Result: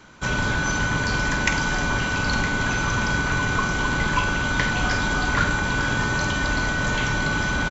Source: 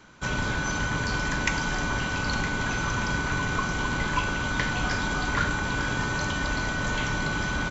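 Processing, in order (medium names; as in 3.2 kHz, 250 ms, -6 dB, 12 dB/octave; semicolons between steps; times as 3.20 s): doubling 49 ms -12 dB; trim +4 dB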